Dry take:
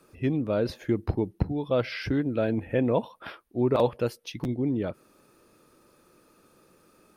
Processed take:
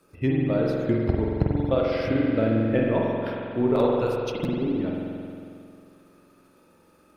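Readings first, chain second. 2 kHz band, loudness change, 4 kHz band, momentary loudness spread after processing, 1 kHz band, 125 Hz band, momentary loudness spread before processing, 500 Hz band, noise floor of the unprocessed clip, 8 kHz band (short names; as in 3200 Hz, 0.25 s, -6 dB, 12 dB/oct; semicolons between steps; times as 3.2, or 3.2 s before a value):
+3.0 dB, +3.5 dB, +0.5 dB, 9 LU, +3.0 dB, +4.0 dB, 8 LU, +3.5 dB, -62 dBFS, n/a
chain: transient shaper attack +6 dB, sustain -3 dB; spring tank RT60 2.5 s, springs 45 ms, chirp 40 ms, DRR -2.5 dB; gain -3 dB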